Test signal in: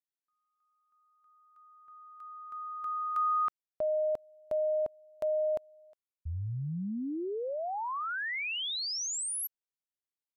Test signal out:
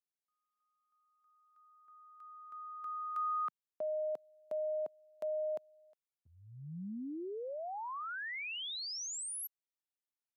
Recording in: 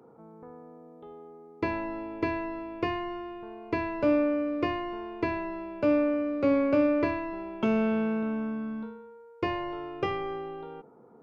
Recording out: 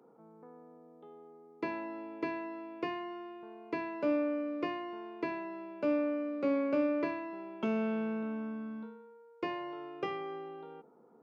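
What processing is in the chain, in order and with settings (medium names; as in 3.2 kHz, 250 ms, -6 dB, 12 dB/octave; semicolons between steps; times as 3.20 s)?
high-pass 160 Hz 24 dB/octave; trim -6.5 dB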